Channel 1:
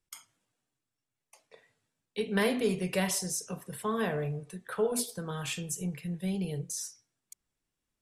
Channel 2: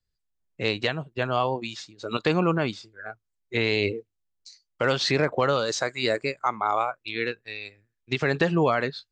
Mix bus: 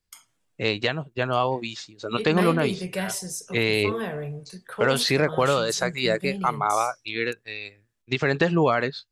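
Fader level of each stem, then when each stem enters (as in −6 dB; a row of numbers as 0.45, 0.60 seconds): +0.5, +1.5 decibels; 0.00, 0.00 seconds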